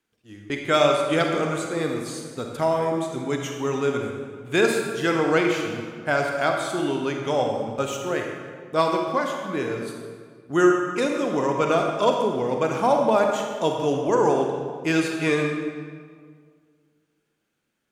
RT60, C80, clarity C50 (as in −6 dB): 1.9 s, 4.5 dB, 2.5 dB